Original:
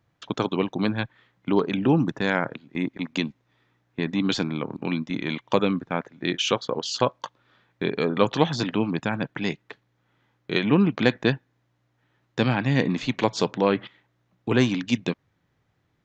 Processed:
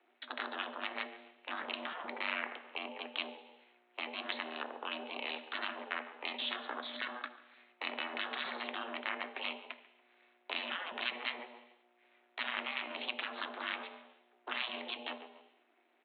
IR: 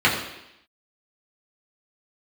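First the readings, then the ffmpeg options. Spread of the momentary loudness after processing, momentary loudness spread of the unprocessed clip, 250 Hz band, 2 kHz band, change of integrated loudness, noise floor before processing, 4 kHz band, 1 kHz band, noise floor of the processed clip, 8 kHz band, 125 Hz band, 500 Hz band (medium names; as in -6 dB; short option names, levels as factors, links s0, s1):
12 LU, 10 LU, -26.5 dB, -7.5 dB, -14.5 dB, -71 dBFS, -8.0 dB, -11.0 dB, -72 dBFS, no reading, under -40 dB, -21.0 dB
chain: -filter_complex "[0:a]aeval=exprs='if(lt(val(0),0),0.447*val(0),val(0))':c=same,afreqshift=420,aresample=8000,aresample=44100,asplit=2[s0][s1];[s1]adelay=141,lowpass=f=2600:p=1,volume=0.1,asplit=2[s2][s3];[s3]adelay=141,lowpass=f=2600:p=1,volume=0.29[s4];[s0][s2][s4]amix=inputs=3:normalize=0,asplit=2[s5][s6];[1:a]atrim=start_sample=2205,asetrate=48510,aresample=44100[s7];[s6][s7]afir=irnorm=-1:irlink=0,volume=0.0376[s8];[s5][s8]amix=inputs=2:normalize=0,afftfilt=real='re*lt(hypot(re,im),0.2)':imag='im*lt(hypot(re,im),0.2)':win_size=1024:overlap=0.75,equalizer=f=630:t=o:w=2.6:g=-9.5,bandreject=f=50:t=h:w=6,bandreject=f=100:t=h:w=6,acompressor=threshold=0.00126:ratio=1.5,aeval=exprs='val(0)*sin(2*PI*180*n/s)':c=same,volume=2.99"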